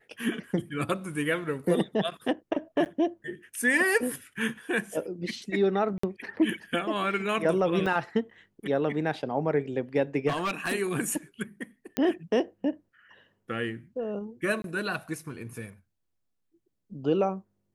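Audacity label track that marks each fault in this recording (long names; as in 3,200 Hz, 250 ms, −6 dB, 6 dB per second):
2.850000	2.860000	drop-out 9.1 ms
5.980000	6.030000	drop-out 54 ms
7.860000	7.860000	drop-out 4 ms
10.280000	10.740000	clipping −24.5 dBFS
11.970000	11.970000	click −11 dBFS
14.620000	14.640000	drop-out 22 ms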